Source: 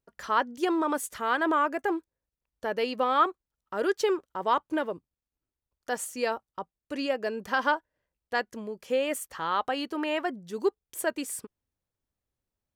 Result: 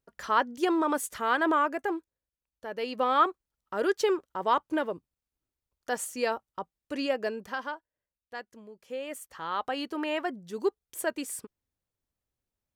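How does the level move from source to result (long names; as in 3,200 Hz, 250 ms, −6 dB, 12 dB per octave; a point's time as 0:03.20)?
0:01.49 +0.5 dB
0:02.65 −8 dB
0:03.06 0 dB
0:07.26 0 dB
0:07.72 −11.5 dB
0:08.78 −11.5 dB
0:09.81 −1.5 dB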